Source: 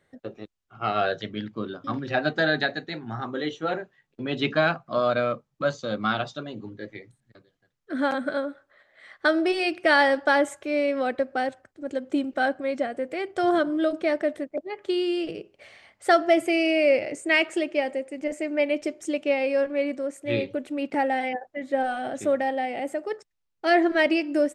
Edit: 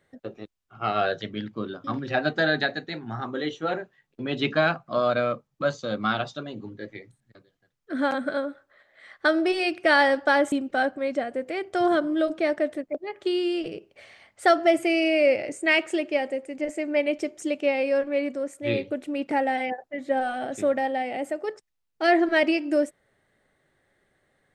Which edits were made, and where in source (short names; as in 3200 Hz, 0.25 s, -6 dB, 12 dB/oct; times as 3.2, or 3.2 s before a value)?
10.52–12.15 cut